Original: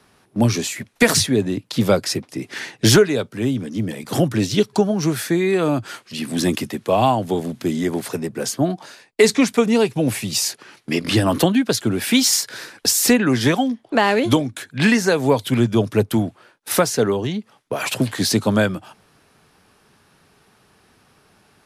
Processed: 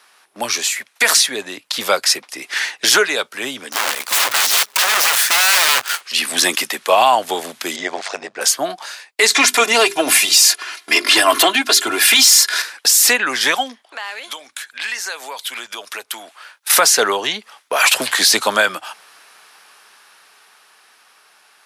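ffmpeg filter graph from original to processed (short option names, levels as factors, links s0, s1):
-filter_complex "[0:a]asettb=1/sr,asplit=3[s0][s1][s2];[s0]atrim=end=3.724[s3];[s1]atrim=start=3.72:end=6.01,asetpts=PTS-STARTPTS,afade=t=in:d=0.004:c=qsin,afade=t=out:st=2.286:d=0.004:c=qsin,equalizer=f=81:w=4.3:g=14,acrusher=bits=6:dc=4:mix=0:aa=0.000001,aeval=exprs='(mod(10*val(0)+1,2)-1)/10':c=same[s4];[s2]atrim=start=6.006[s5];[s3][s4]acrossfade=d=0.004:c1=hsin:c2=qsin[s6];[s6][s5]acrossfade=d=0.004:c1=qsin:c2=hsin,asettb=1/sr,asplit=3[s7][s8][s9];[s7]atrim=end=7.764[s10];[s8]atrim=start=7.76:end=8.41,asetpts=PTS-STARTPTS,afade=t=in:d=0.004:c=qsin,afade=t=out:st=0.646:d=0.004:c=qsin,lowpass=f=6600:w=0.5412,lowpass=f=6600:w=1.3066,equalizer=f=670:w=3.2:g=9.5,tremolo=f=98:d=0.75[s11];[s9]atrim=start=8.406[s12];[s10][s11]acrossfade=d=0.004:c1=hsin:c2=qsin[s13];[s13][s12]acrossfade=d=0.004:c1=qsin:c2=hsin,asettb=1/sr,asplit=3[s14][s15][s16];[s14]atrim=end=9.304[s17];[s15]atrim=start=9.3:end=12.62,asetpts=PTS-STARTPTS,afade=t=in:d=0.004:c=qsin,afade=t=out:st=3.316:d=0.004:c=qsin,aecho=1:1:2.9:0.72,atrim=end_sample=146412,acontrast=56,bandreject=f=50:t=h:w=6,bandreject=f=100:t=h:w=6,bandreject=f=150:t=h:w=6,bandreject=f=200:t=h:w=6,bandreject=f=250:t=h:w=6,bandreject=f=300:t=h:w=6,bandreject=f=350:t=h:w=6,bandreject=f=400:t=h:w=6[s18];[s16]atrim=start=12.616[s19];[s17][s18]acrossfade=d=0.004:c1=hsin:c2=qsin[s20];[s20][s19]acrossfade=d=0.004:c1=qsin:c2=hsin,asettb=1/sr,asplit=3[s21][s22][s23];[s21]atrim=end=13.824[s24];[s22]atrim=start=13.82:end=16.7,asetpts=PTS-STARTPTS,afade=t=in:d=0.004:c=qsin,afade=t=out:st=2.876:d=0.004:c=qsin,highpass=f=900:p=1,acompressor=threshold=0.0126:ratio=2.5:attack=3.2:release=140:knee=1:detection=peak[s25];[s23]atrim=start=16.696[s26];[s24][s25]acrossfade=d=0.004:c1=hsin:c2=qsin[s27];[s27][s26]acrossfade=d=0.004:c1=qsin:c2=hsin,highpass=990,dynaudnorm=f=320:g=13:m=3.76,alimiter=limit=0.335:level=0:latency=1:release=28,volume=2.37"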